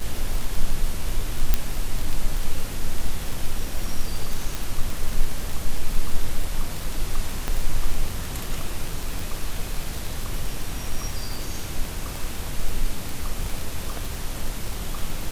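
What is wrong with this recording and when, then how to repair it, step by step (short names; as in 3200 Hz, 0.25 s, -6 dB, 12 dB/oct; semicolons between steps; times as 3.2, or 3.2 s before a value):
crackle 33/s -24 dBFS
1.54 pop -4 dBFS
4.55 pop
7.48 pop -11 dBFS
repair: de-click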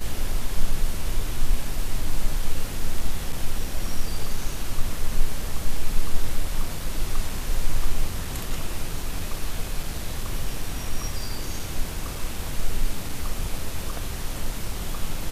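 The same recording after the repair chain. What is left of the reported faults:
1.54 pop
7.48 pop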